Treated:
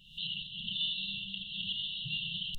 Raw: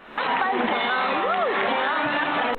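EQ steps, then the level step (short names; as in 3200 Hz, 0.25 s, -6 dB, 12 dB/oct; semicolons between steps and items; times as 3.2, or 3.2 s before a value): brick-wall FIR band-stop 190–2700 Hz; notches 60/120/180 Hz; 0.0 dB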